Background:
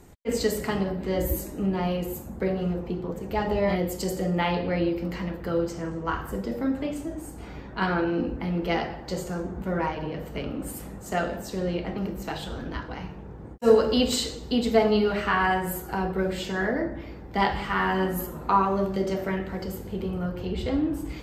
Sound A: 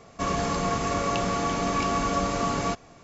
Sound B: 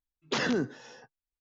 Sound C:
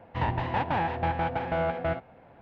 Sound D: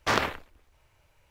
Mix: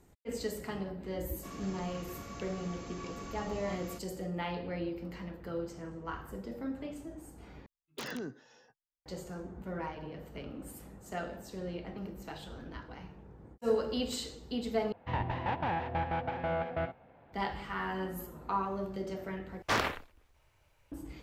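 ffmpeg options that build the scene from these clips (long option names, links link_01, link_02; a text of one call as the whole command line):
ffmpeg -i bed.wav -i cue0.wav -i cue1.wav -i cue2.wav -i cue3.wav -filter_complex "[0:a]volume=-11.5dB[link_01];[1:a]equalizer=frequency=670:width=0.84:gain=-7[link_02];[2:a]aeval=exprs='(mod(9.44*val(0)+1,2)-1)/9.44':channel_layout=same[link_03];[4:a]asoftclip=type=hard:threshold=-15.5dB[link_04];[link_01]asplit=4[link_05][link_06][link_07][link_08];[link_05]atrim=end=7.664[link_09];[link_03]atrim=end=1.4,asetpts=PTS-STARTPTS,volume=-11.5dB[link_10];[link_06]atrim=start=9.056:end=14.924[link_11];[3:a]atrim=end=2.41,asetpts=PTS-STARTPTS,volume=-5.5dB[link_12];[link_07]atrim=start=17.326:end=19.624[link_13];[link_04]atrim=end=1.3,asetpts=PTS-STARTPTS,volume=-4dB[link_14];[link_08]atrim=start=20.916[link_15];[link_02]atrim=end=3.03,asetpts=PTS-STARTPTS,volume=-17dB,afade=type=in:duration=0.004:curve=hsin,afade=type=out:start_time=3.026:duration=0.004:curve=hsin,adelay=1240[link_16];[link_09][link_10]acrossfade=duration=0.004:curve1=hsin:curve2=hsin[link_17];[link_17][link_11]acrossfade=duration=0.004:curve1=hsin:curve2=hsin[link_18];[link_18][link_12]acrossfade=duration=0.004:curve1=hsin:curve2=hsin[link_19];[link_19][link_13]acrossfade=duration=0.004:curve1=hsin:curve2=hsin[link_20];[link_20][link_14]acrossfade=duration=0.004:curve1=hsin:curve2=hsin[link_21];[link_21][link_15]acrossfade=duration=0.004:curve1=hsin:curve2=hsin[link_22];[link_22][link_16]amix=inputs=2:normalize=0" out.wav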